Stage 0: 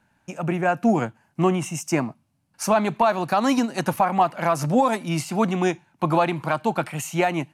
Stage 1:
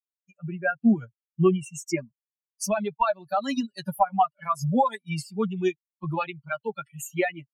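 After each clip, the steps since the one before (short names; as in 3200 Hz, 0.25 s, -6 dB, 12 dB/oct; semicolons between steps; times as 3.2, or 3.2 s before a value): per-bin expansion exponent 3; comb 5.1 ms, depth 77%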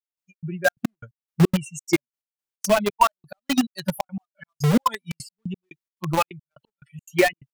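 in parallel at -3.5 dB: bit-crush 4-bit; on the sum: step gate "..xx.xxx.x..x" 176 bpm -60 dB; gain +2.5 dB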